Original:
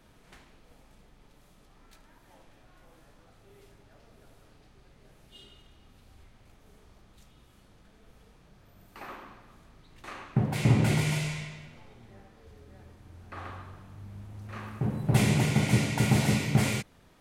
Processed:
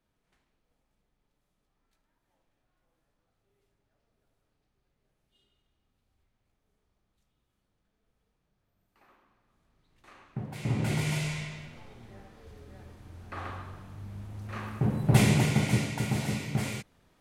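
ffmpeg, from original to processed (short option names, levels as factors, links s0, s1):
-af "volume=1.33,afade=t=in:st=9.28:d=1.34:silence=0.298538,afade=t=in:st=10.62:d=0.97:silence=0.251189,afade=t=out:st=15.14:d=0.92:silence=0.375837"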